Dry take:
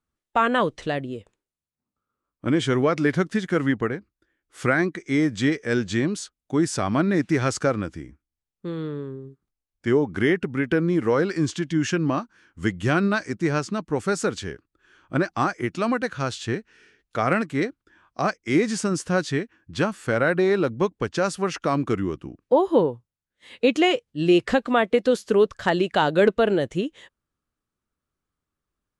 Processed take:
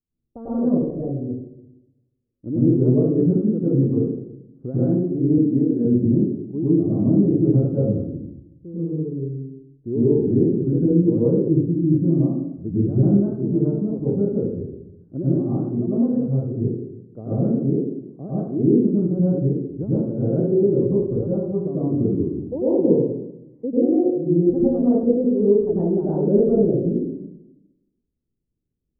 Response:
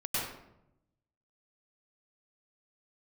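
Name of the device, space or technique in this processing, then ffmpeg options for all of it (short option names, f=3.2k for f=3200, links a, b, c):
next room: -filter_complex "[0:a]lowpass=f=440:w=0.5412,lowpass=f=440:w=1.3066[a];[1:a]atrim=start_sample=2205[b];[a][b]afir=irnorm=-1:irlink=0,asettb=1/sr,asplit=3[c][d][e];[c]atrim=end=5.384[f];[d]atrim=start=5.38:end=5.85,asetpts=PTS-STARTPTS,afade=t=in:d=0.004:c=qsin,afade=t=out:st=0.466:d=0.004:c=qsin,highpass=f=150:w=0.5412,highpass=f=150:w=1.3066[g];[e]atrim=start=5.846[h];[f][g]acrossfade=d=0.004:c1=hsin:c2=qsin[i];[i][h]acrossfade=d=0.004:c1=qsin:c2=hsin,volume=-1.5dB"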